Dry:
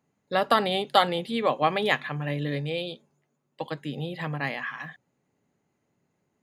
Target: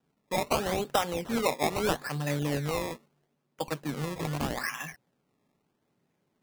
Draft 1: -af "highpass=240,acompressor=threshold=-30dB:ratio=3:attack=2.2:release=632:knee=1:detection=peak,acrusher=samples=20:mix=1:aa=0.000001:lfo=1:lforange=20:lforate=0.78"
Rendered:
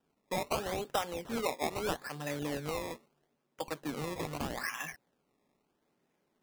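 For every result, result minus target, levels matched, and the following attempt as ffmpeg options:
downward compressor: peak gain reduction +6 dB; 125 Hz band −4.0 dB
-af "highpass=240,acompressor=threshold=-21dB:ratio=3:attack=2.2:release=632:knee=1:detection=peak,acrusher=samples=20:mix=1:aa=0.000001:lfo=1:lforange=20:lforate=0.78"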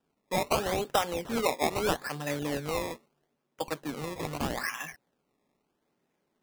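125 Hz band −4.5 dB
-af "highpass=110,acompressor=threshold=-21dB:ratio=3:attack=2.2:release=632:knee=1:detection=peak,acrusher=samples=20:mix=1:aa=0.000001:lfo=1:lforange=20:lforate=0.78"

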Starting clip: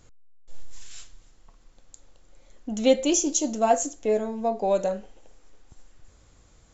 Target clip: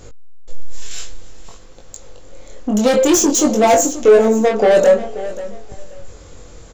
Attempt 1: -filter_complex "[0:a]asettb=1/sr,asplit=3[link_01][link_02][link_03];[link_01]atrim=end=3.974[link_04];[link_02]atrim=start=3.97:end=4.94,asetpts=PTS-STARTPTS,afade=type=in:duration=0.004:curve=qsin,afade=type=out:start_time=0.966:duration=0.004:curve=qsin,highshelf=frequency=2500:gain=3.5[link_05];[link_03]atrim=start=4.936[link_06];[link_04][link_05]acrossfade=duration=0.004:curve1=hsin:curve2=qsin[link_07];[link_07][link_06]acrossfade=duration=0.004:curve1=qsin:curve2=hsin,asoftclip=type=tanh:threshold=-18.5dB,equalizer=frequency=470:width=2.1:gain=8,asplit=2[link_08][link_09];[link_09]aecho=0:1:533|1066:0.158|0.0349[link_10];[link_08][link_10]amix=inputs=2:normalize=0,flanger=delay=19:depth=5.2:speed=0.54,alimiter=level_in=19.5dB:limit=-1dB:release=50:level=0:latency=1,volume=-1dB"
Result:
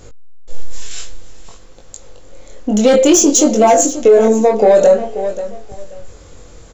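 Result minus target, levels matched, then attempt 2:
soft clipping: distortion −7 dB
-filter_complex "[0:a]asettb=1/sr,asplit=3[link_01][link_02][link_03];[link_01]atrim=end=3.974[link_04];[link_02]atrim=start=3.97:end=4.94,asetpts=PTS-STARTPTS,afade=type=in:duration=0.004:curve=qsin,afade=type=out:start_time=0.966:duration=0.004:curve=qsin,highshelf=frequency=2500:gain=3.5[link_05];[link_03]atrim=start=4.936[link_06];[link_04][link_05]acrossfade=duration=0.004:curve1=hsin:curve2=qsin[link_07];[link_07][link_06]acrossfade=duration=0.004:curve1=qsin:curve2=hsin,asoftclip=type=tanh:threshold=-28dB,equalizer=frequency=470:width=2.1:gain=8,asplit=2[link_08][link_09];[link_09]aecho=0:1:533|1066:0.158|0.0349[link_10];[link_08][link_10]amix=inputs=2:normalize=0,flanger=delay=19:depth=5.2:speed=0.54,alimiter=level_in=19.5dB:limit=-1dB:release=50:level=0:latency=1,volume=-1dB"

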